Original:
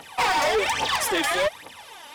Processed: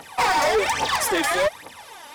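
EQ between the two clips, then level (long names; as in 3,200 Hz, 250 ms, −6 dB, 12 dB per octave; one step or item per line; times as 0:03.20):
parametric band 3,000 Hz −5 dB 0.67 octaves
+2.5 dB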